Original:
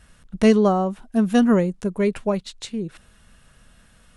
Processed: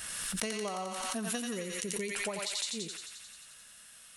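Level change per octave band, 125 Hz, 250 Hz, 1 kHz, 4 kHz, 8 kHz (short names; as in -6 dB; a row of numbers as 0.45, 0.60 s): -19.0, -21.0, -13.0, 0.0, +7.0 dB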